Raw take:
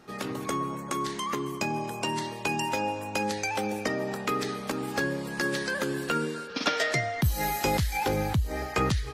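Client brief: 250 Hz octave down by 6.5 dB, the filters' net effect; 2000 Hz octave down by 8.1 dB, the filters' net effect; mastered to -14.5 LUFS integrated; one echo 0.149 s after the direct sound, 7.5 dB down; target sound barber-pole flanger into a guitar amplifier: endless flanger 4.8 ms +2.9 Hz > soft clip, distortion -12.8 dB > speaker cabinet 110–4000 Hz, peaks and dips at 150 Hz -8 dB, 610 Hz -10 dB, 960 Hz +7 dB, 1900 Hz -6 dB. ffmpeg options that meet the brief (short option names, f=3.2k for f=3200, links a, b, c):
-filter_complex "[0:a]equalizer=f=250:t=o:g=-7,equalizer=f=2k:t=o:g=-7.5,aecho=1:1:149:0.422,asplit=2[a][b];[b]adelay=4.8,afreqshift=2.9[c];[a][c]amix=inputs=2:normalize=1,asoftclip=threshold=-28.5dB,highpass=110,equalizer=f=150:t=q:w=4:g=-8,equalizer=f=610:t=q:w=4:g=-10,equalizer=f=960:t=q:w=4:g=7,equalizer=f=1.9k:t=q:w=4:g=-6,lowpass=f=4k:w=0.5412,lowpass=f=4k:w=1.3066,volume=23dB"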